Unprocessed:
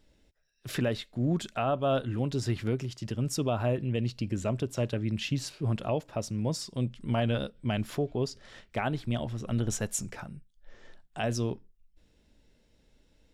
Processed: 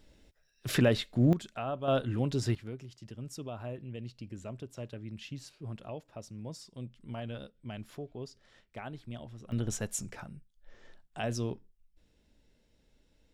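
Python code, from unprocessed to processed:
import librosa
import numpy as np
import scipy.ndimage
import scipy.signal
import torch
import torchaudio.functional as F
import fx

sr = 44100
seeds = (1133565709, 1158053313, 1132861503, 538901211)

y = fx.gain(x, sr, db=fx.steps((0.0, 4.0), (1.33, -7.0), (1.88, -0.5), (2.55, -12.0), (9.52, -3.5)))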